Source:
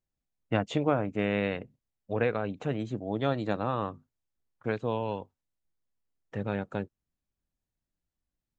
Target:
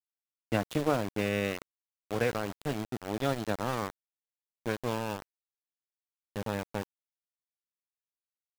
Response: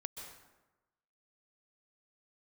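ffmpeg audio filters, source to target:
-af "highshelf=frequency=4400:gain=2.5,aeval=exprs='val(0)*gte(abs(val(0)),0.0299)':channel_layout=same,volume=-1.5dB"

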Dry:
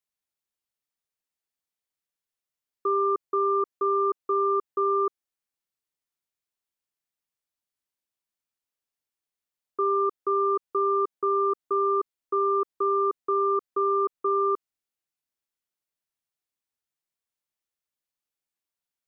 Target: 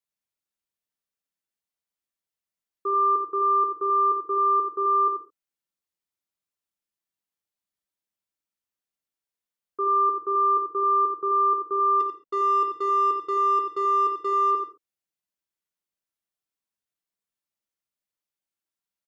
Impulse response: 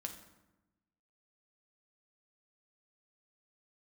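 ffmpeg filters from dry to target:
-filter_complex "[0:a]asplit=3[link_01][link_02][link_03];[link_01]afade=type=out:start_time=11.99:duration=0.02[link_04];[link_02]adynamicsmooth=sensitivity=3.5:basefreq=940,afade=type=in:start_time=11.99:duration=0.02,afade=type=out:start_time=14.5:duration=0.02[link_05];[link_03]afade=type=in:start_time=14.5:duration=0.02[link_06];[link_04][link_05][link_06]amix=inputs=3:normalize=0,asplit=2[link_07][link_08];[link_08]adelay=87.46,volume=-7dB,highshelf=frequency=4000:gain=-1.97[link_09];[link_07][link_09]amix=inputs=2:normalize=0[link_10];[1:a]atrim=start_sample=2205,atrim=end_sample=6174[link_11];[link_10][link_11]afir=irnorm=-1:irlink=0"

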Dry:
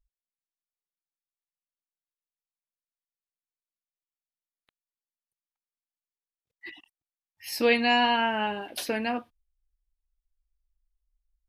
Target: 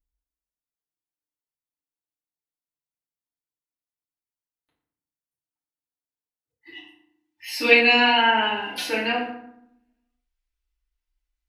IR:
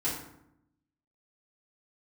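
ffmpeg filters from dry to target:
-filter_complex "[0:a]asetnsamples=nb_out_samples=441:pad=0,asendcmd='6.72 equalizer g 11.5',equalizer=frequency=2600:width_type=o:width=2.3:gain=-6.5[link_01];[1:a]atrim=start_sample=2205[link_02];[link_01][link_02]afir=irnorm=-1:irlink=0,volume=-7dB"

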